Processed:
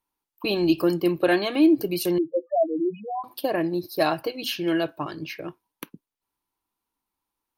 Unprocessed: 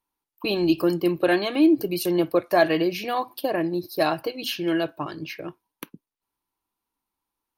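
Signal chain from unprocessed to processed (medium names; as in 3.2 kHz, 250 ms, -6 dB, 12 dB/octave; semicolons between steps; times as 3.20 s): 2.18–3.24 s: loudest bins only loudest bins 2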